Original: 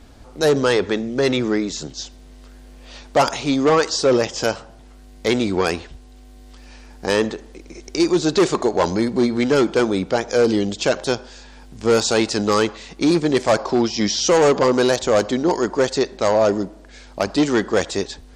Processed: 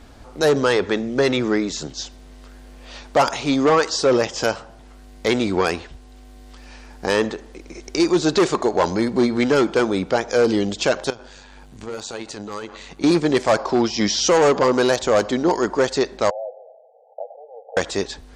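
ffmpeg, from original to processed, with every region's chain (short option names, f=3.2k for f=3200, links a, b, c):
-filter_complex "[0:a]asettb=1/sr,asplit=3[a][b][c];[a]atrim=end=11.104[d];[b]atrim=start=11.1:end=13.04,asetpts=PTS-STARTPTS,afade=t=in:d=0.004:c=qsin,afade=t=out:st=1.936:d=0.004:c=qsin,bandreject=f=5.2k:w=9.2,acompressor=threshold=-28dB:ratio=5:attack=3.2:release=140:knee=1:detection=peak,tremolo=f=97:d=0.571[e];[c]atrim=start=13.036[f];[d][e]acrossfade=d=0.004:c1=hsin:c2=qsin[g];[g][f]acrossfade=d=0.004:c1=qsin:c2=hsin,asettb=1/sr,asplit=3[h][i][j];[h]atrim=end=16.304[k];[i]atrim=start=16.3:end=17.77,asetpts=PTS-STARTPTS,afade=t=in:d=0.004:c=qsin,afade=t=out:st=1.466:d=0.004:c=qsin,acompressor=threshold=-26dB:ratio=8:attack=3.2:release=140:knee=1:detection=peak,asuperpass=centerf=620:order=20:qfactor=1.6[l];[j]atrim=start=17.766[m];[k][l]acrossfade=d=0.004:c1=hsin:c2=qsin[n];[n][m]acrossfade=d=0.004:c1=qsin:c2=hsin,equalizer=f=1.2k:t=o:w=2.4:g=3.5,alimiter=limit=-8dB:level=0:latency=1:release=468"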